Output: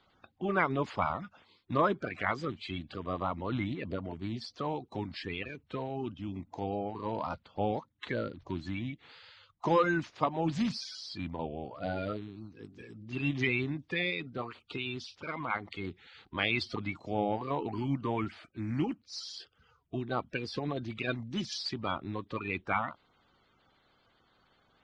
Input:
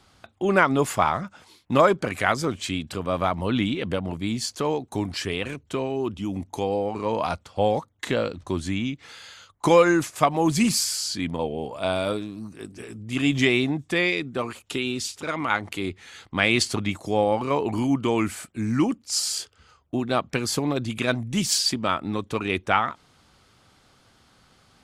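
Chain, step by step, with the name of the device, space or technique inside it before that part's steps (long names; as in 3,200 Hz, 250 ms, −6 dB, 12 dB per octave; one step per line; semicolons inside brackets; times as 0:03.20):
clip after many re-uploads (low-pass filter 4,600 Hz 24 dB per octave; spectral magnitudes quantised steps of 30 dB)
level −9 dB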